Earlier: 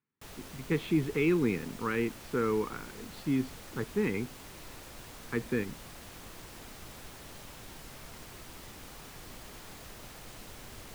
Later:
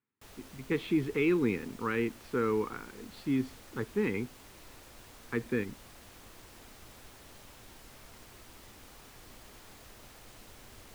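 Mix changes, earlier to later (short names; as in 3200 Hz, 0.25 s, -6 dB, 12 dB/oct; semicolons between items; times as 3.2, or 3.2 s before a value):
background -5.0 dB; master: add bell 160 Hz -8 dB 0.25 oct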